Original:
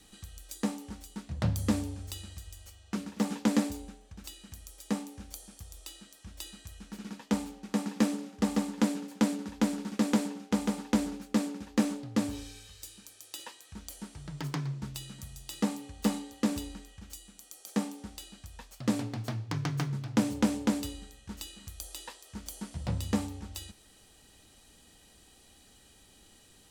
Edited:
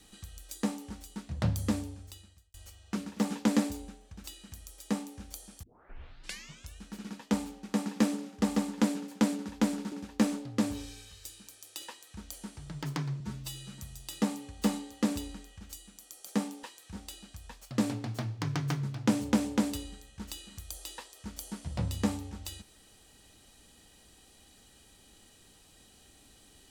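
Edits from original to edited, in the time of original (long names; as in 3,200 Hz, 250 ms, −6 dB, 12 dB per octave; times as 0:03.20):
0:01.48–0:02.54: fade out
0:05.63: tape start 1.17 s
0:09.92–0:11.50: remove
0:13.46–0:13.77: duplicate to 0:18.04
0:14.78–0:15.13: time-stretch 1.5×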